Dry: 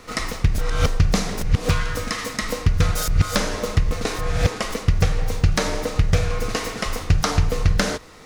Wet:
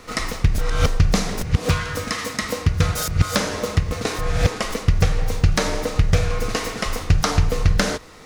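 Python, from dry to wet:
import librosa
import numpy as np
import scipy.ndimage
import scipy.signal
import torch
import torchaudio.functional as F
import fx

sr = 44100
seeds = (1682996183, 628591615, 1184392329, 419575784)

y = fx.highpass(x, sr, hz=47.0, slope=24, at=(1.43, 4.16))
y = y * 10.0 ** (1.0 / 20.0)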